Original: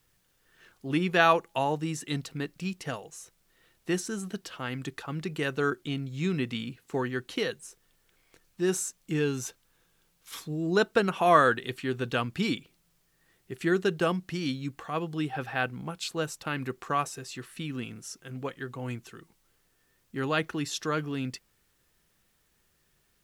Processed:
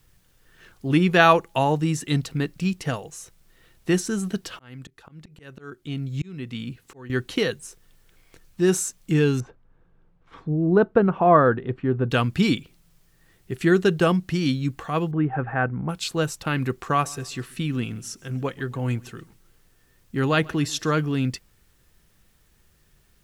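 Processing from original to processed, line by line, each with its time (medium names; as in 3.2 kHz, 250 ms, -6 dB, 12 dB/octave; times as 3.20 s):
4.51–7.10 s: slow attack 792 ms
9.40–12.11 s: low-pass 1.1 kHz
15.11–15.89 s: low-pass 1.8 kHz 24 dB/octave
16.80–20.96 s: feedback delay 135 ms, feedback 40%, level -24 dB
whole clip: bass shelf 150 Hz +10.5 dB; trim +5.5 dB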